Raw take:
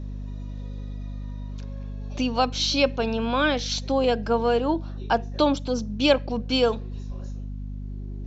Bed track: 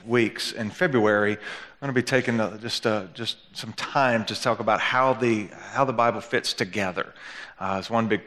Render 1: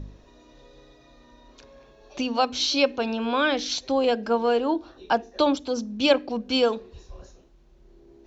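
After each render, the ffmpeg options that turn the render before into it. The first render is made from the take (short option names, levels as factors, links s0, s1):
-af "bandreject=f=50:t=h:w=4,bandreject=f=100:t=h:w=4,bandreject=f=150:t=h:w=4,bandreject=f=200:t=h:w=4,bandreject=f=250:t=h:w=4,bandreject=f=300:t=h:w=4,bandreject=f=350:t=h:w=4,bandreject=f=400:t=h:w=4,bandreject=f=450:t=h:w=4"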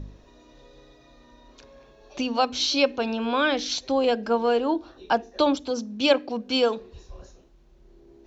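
-filter_complex "[0:a]asettb=1/sr,asplit=3[s0][s1][s2];[s0]atrim=end=5.704[s3];[s1]atrim=start=5.7:end=6.78,asetpts=PTS-STARTPTS,afade=t=in:d=0.004:c=qsin,afade=t=out:st=1.076:d=0.004:c=qsin,highpass=f=150:p=1[s4];[s2]atrim=start=6.776[s5];[s3][s4]acrossfade=d=0.004:c1=hsin:c2=qsin[s6];[s6][s5]acrossfade=d=0.004:c1=qsin:c2=hsin"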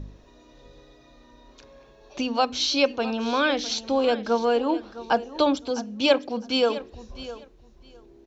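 -af "aecho=1:1:658|1316:0.168|0.0285"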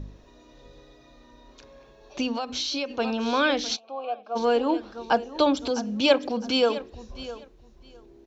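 -filter_complex "[0:a]asettb=1/sr,asplit=3[s0][s1][s2];[s0]atrim=end=2.344[s3];[s1]atrim=start=2.34:end=2.99,asetpts=PTS-STARTPTS,afade=t=in:d=0.004:c=qsin,afade=t=out:st=0.646:d=0.004:c=qsin,acompressor=threshold=0.0562:ratio=12:attack=3.2:release=140:knee=1:detection=peak[s4];[s2]atrim=start=2.986[s5];[s3][s4]acrossfade=d=0.004:c1=hsin:c2=qsin[s6];[s6][s5]acrossfade=d=0.004:c1=qsin:c2=hsin,asplit=3[s7][s8][s9];[s7]afade=t=out:st=3.75:d=0.02[s10];[s8]asplit=3[s11][s12][s13];[s11]bandpass=f=730:t=q:w=8,volume=1[s14];[s12]bandpass=f=1090:t=q:w=8,volume=0.501[s15];[s13]bandpass=f=2440:t=q:w=8,volume=0.355[s16];[s14][s15][s16]amix=inputs=3:normalize=0,afade=t=in:st=3.75:d=0.02,afade=t=out:st=4.35:d=0.02[s17];[s9]afade=t=in:st=4.35:d=0.02[s18];[s10][s17][s18]amix=inputs=3:normalize=0,asplit=3[s19][s20][s21];[s19]afade=t=out:st=5.39:d=0.02[s22];[s20]acompressor=mode=upward:threshold=0.0794:ratio=2.5:attack=3.2:release=140:knee=2.83:detection=peak,afade=t=in:st=5.39:d=0.02,afade=t=out:st=6.69:d=0.02[s23];[s21]afade=t=in:st=6.69:d=0.02[s24];[s22][s23][s24]amix=inputs=3:normalize=0"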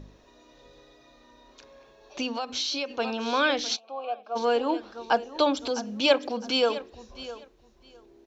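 -af "lowshelf=f=240:g=-10"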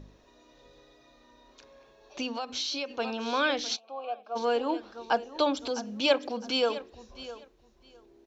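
-af "volume=0.708"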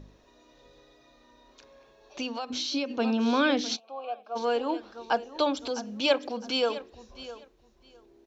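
-filter_complex "[0:a]asettb=1/sr,asplit=3[s0][s1][s2];[s0]atrim=end=2.504[s3];[s1]atrim=start=2.5:end=3.8,asetpts=PTS-STARTPTS,afade=t=in:d=0.004:c=qsin,afade=t=out:st=1.296:d=0.004:c=qsin,equalizer=f=240:t=o:w=1.2:g=11.5[s4];[s2]atrim=start=3.796[s5];[s3][s4]acrossfade=d=0.004:c1=hsin:c2=qsin[s6];[s6][s5]acrossfade=d=0.004:c1=qsin:c2=hsin"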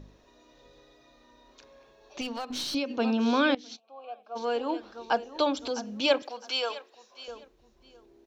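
-filter_complex "[0:a]asettb=1/sr,asplit=3[s0][s1][s2];[s0]atrim=end=2.214[s3];[s1]atrim=start=2.21:end=2.75,asetpts=PTS-STARTPTS,afade=t=in:d=0.004:c=qsin,afade=t=out:st=0.536:d=0.004:c=qsin,aeval=exprs='clip(val(0),-1,0.0211)':c=same[s4];[s2]atrim=start=2.746[s5];[s3][s4]acrossfade=d=0.004:c1=hsin:c2=qsin[s6];[s6][s5]acrossfade=d=0.004:c1=qsin:c2=hsin,asettb=1/sr,asplit=3[s7][s8][s9];[s7]atrim=end=6.224[s10];[s8]atrim=start=6.22:end=7.28,asetpts=PTS-STARTPTS,afade=t=in:d=0.004:c=qsin,afade=t=out:st=1.056:d=0.004:c=qsin,highpass=670[s11];[s9]atrim=start=7.276[s12];[s10][s11]acrossfade=d=0.004:c1=hsin:c2=qsin[s13];[s13][s12]acrossfade=d=0.004:c1=qsin:c2=hsin,asplit=2[s14][s15];[s14]atrim=end=3.55,asetpts=PTS-STARTPTS,afade=t=out:st=3.546:d=0.004:c=hsin:silence=0.105925[s16];[s15]atrim=start=3.55,asetpts=PTS-STARTPTS,afade=t=in:d=1.3:silence=0.105925[s17];[s16][s17]concat=n=2:v=0:a=1"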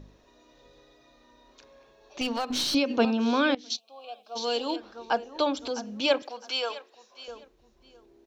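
-filter_complex "[0:a]asettb=1/sr,asplit=3[s0][s1][s2];[s0]atrim=end=3.704[s3];[s1]atrim=start=3.7:end=4.76,asetpts=PTS-STARTPTS,afade=t=in:d=0.004:c=qsin,afade=t=out:st=1.056:d=0.004:c=qsin,highshelf=f=2600:t=q:w=1.5:g=11.5[s4];[s2]atrim=start=4.756[s5];[s3][s4]acrossfade=d=0.004:c1=hsin:c2=qsin[s6];[s6][s5]acrossfade=d=0.004:c1=qsin:c2=hsin,asplit=3[s7][s8][s9];[s7]atrim=end=2.212[s10];[s8]atrim=start=2.208:end=3.052,asetpts=PTS-STARTPTS,volume=1.88[s11];[s9]atrim=start=3.048[s12];[s10][s11]acrossfade=d=0.004:c1=hsin:c2=hsin[s13];[s13][s12]acrossfade=d=0.004:c1=hsin:c2=hsin"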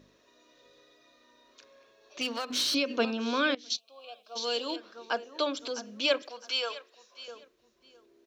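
-af "highpass=f=480:p=1,equalizer=f=820:w=4.6:g=-12"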